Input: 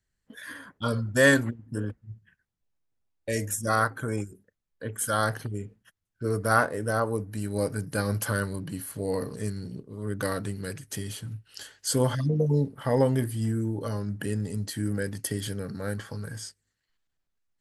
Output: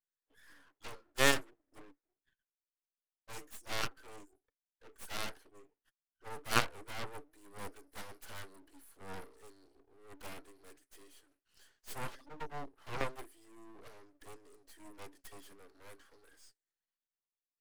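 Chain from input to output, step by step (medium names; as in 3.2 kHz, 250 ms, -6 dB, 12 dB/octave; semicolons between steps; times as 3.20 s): rippled Chebyshev high-pass 280 Hz, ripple 3 dB; Chebyshev shaper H 3 -24 dB, 7 -22 dB, 8 -17 dB, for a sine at -8.5 dBFS; half-wave rectifier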